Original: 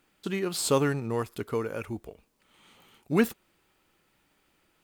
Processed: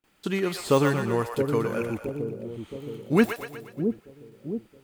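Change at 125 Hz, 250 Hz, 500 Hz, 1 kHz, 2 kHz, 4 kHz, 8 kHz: +4.5, +5.0, +4.5, +4.5, +4.5, -0.5, -5.5 dB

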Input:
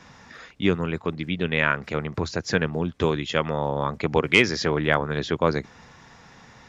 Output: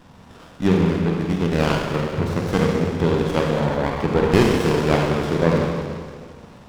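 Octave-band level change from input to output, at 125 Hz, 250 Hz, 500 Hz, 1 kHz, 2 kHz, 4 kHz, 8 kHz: +7.5, +7.0, +5.0, +3.0, -3.5, -1.5, +2.0 dB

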